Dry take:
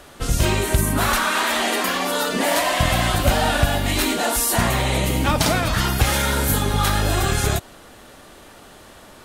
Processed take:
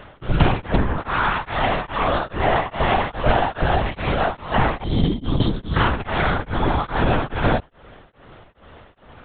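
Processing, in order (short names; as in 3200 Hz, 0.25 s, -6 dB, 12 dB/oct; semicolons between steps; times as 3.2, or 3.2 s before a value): dynamic EQ 890 Hz, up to +5 dB, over -34 dBFS, Q 0.91; spectral gain 4.84–5.77, 450–3000 Hz -17 dB; vocal rider within 4 dB 0.5 s; air absorption 240 m; LPC vocoder at 8 kHz whisper; beating tremolo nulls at 2.4 Hz; gain +2 dB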